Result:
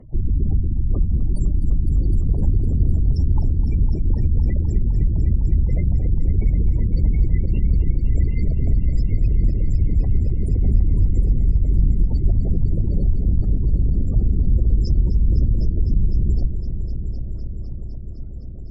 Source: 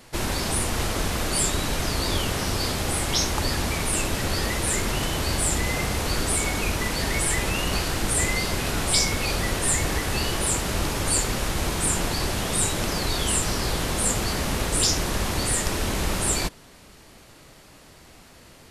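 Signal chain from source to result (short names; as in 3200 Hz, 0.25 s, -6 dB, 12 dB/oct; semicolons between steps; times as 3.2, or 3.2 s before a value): formant sharpening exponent 2; RIAA curve playback; spectral gate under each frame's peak -30 dB strong; compressor, threshold -10 dBFS, peak gain reduction 8.5 dB; multi-head echo 0.254 s, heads all three, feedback 72%, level -14 dB; added harmonics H 2 -17 dB, 4 -28 dB, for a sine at -1 dBFS; gain -3 dB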